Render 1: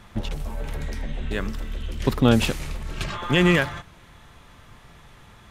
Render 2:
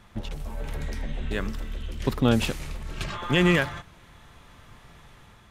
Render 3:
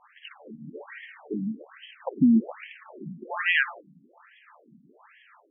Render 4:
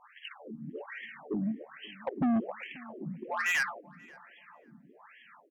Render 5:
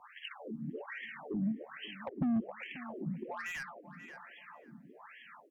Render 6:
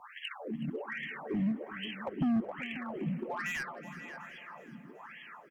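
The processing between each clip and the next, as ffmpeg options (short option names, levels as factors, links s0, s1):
-af "dynaudnorm=f=210:g=5:m=1.58,volume=0.531"
-af "lowshelf=f=110:g=6.5,afftfilt=real='re*between(b*sr/1024,200*pow(2400/200,0.5+0.5*sin(2*PI*1.2*pts/sr))/1.41,200*pow(2400/200,0.5+0.5*sin(2*PI*1.2*pts/sr))*1.41)':imag='im*between(b*sr/1024,200*pow(2400/200,0.5+0.5*sin(2*PI*1.2*pts/sr))/1.41,200*pow(2400/200,0.5+0.5*sin(2*PI*1.2*pts/sr))*1.41)':win_size=1024:overlap=0.75,volume=1.68"
-filter_complex "[0:a]asoftclip=type=tanh:threshold=0.0596,asplit=2[s0][s1];[s1]adelay=535,lowpass=f=1800:p=1,volume=0.0794,asplit=2[s2][s3];[s3]adelay=535,lowpass=f=1800:p=1,volume=0.27[s4];[s0][s2][s4]amix=inputs=3:normalize=0"
-filter_complex "[0:a]acrossover=split=210[s0][s1];[s1]acompressor=threshold=0.00794:ratio=8[s2];[s0][s2]amix=inputs=2:normalize=0,volume=1.26"
-filter_complex "[0:a]asplit=2[s0][s1];[s1]asoftclip=type=hard:threshold=0.015,volume=0.668[s2];[s0][s2]amix=inputs=2:normalize=0,aecho=1:1:373|746|1119|1492|1865:0.15|0.0823|0.0453|0.0249|0.0137"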